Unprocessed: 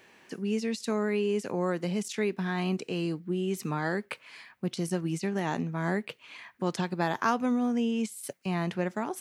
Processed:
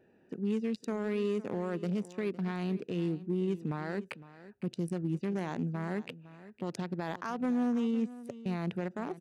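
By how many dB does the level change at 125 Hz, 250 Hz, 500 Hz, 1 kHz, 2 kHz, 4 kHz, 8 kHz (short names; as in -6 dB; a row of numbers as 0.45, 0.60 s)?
-2.5, -2.5, -4.5, -8.5, -9.0, -9.5, -15.0 dB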